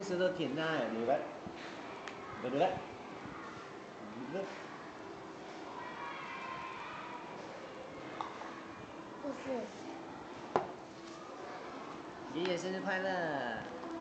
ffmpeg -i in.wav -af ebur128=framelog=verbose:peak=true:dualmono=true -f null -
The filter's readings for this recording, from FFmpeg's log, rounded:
Integrated loudness:
  I:         -37.5 LUFS
  Threshold: -47.5 LUFS
Loudness range:
  LRA:         6.8 LU
  Threshold: -58.9 LUFS
  LRA low:   -42.0 LUFS
  LRA high:  -35.2 LUFS
True peak:
  Peak:      -11.2 dBFS